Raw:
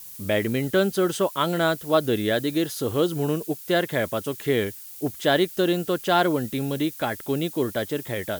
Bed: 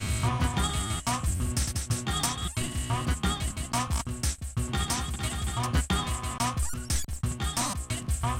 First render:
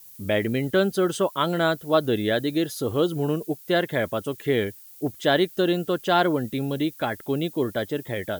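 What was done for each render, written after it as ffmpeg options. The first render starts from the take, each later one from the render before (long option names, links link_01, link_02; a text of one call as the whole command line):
ffmpeg -i in.wav -af "afftdn=noise_reduction=8:noise_floor=-41" out.wav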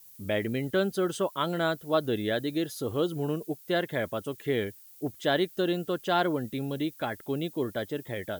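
ffmpeg -i in.wav -af "volume=-5.5dB" out.wav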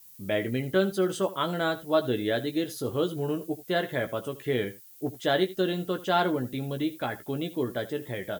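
ffmpeg -i in.wav -filter_complex "[0:a]asplit=2[link_01][link_02];[link_02]adelay=16,volume=-7dB[link_03];[link_01][link_03]amix=inputs=2:normalize=0,aecho=1:1:79:0.141" out.wav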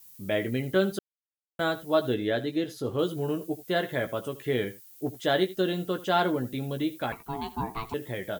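ffmpeg -i in.wav -filter_complex "[0:a]asettb=1/sr,asplit=3[link_01][link_02][link_03];[link_01]atrim=end=2.144[link_04];[link_02]atrim=start=2.14:end=2.99,asetpts=PTS-STARTPTS,afade=type=in:duration=0.004:curve=qsin,afade=type=out:start_time=0.846:duration=0.004:curve=qsin,highshelf=frequency=7100:gain=-12[link_05];[link_03]atrim=start=2.986[link_06];[link_04][link_05]acrossfade=duration=0.004:curve1=hsin:curve2=qsin[link_07];[link_07][link_06]acrossfade=duration=0.004:curve1=qsin:curve2=hsin,asettb=1/sr,asplit=3[link_08][link_09][link_10];[link_08]atrim=end=7.124[link_11];[link_09]atrim=start=7.12:end=7.94,asetpts=PTS-STARTPTS,afade=type=in:duration=0.004:curve=qsin,afade=type=out:start_time=0.816:duration=0.004:curve=qsin,aeval=exprs='val(0)*sin(2*PI*560*n/s)':channel_layout=same[link_12];[link_10]atrim=start=7.936[link_13];[link_11][link_12]acrossfade=duration=0.004:curve1=hsin:curve2=qsin[link_14];[link_14][link_13]acrossfade=duration=0.004:curve1=qsin:curve2=hsin,asplit=3[link_15][link_16][link_17];[link_15]atrim=end=0.99,asetpts=PTS-STARTPTS,afade=type=out:start_time=0.986:duration=0.004:curve=hsin[link_18];[link_16]atrim=start=0.99:end=1.59,asetpts=PTS-STARTPTS,volume=0[link_19];[link_17]atrim=start=1.59,asetpts=PTS-STARTPTS,afade=type=in:duration=0.004:curve=hsin[link_20];[link_18][link_19][link_20]concat=n=3:v=0:a=1" out.wav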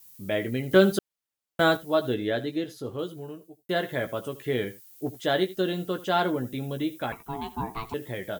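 ffmpeg -i in.wav -filter_complex "[0:a]asettb=1/sr,asplit=3[link_01][link_02][link_03];[link_01]atrim=end=0.714[link_04];[link_02]atrim=start=0.71:end=1.77,asetpts=PTS-STARTPTS,afade=type=in:duration=0.004:curve=qsin,afade=type=out:start_time=1.056:duration=0.004:curve=qsin,acontrast=67[link_05];[link_03]atrim=start=1.766[link_06];[link_04][link_05]acrossfade=duration=0.004:curve1=hsin:curve2=qsin[link_07];[link_07][link_06]acrossfade=duration=0.004:curve1=qsin:curve2=hsin,asettb=1/sr,asplit=3[link_08][link_09][link_10];[link_08]atrim=end=6.304[link_11];[link_09]atrim=start=6.3:end=7.73,asetpts=PTS-STARTPTS,afade=type=in:duration=0.004:curve=qsin,afade=type=out:start_time=1.426:duration=0.004:curve=qsin,bandreject=frequency=4400:width=8.1[link_12];[link_10]atrim=start=7.726[link_13];[link_11][link_12]acrossfade=duration=0.004:curve1=hsin:curve2=qsin[link_14];[link_14][link_13]acrossfade=duration=0.004:curve1=qsin:curve2=hsin,asplit=2[link_15][link_16];[link_15]atrim=end=3.69,asetpts=PTS-STARTPTS,afade=type=out:start_time=2.43:duration=1.26[link_17];[link_16]atrim=start=3.69,asetpts=PTS-STARTPTS,afade=type=in:duration=0.004:curve=hsin[link_18];[link_17][link_18]concat=n=2:v=0:a=1" out.wav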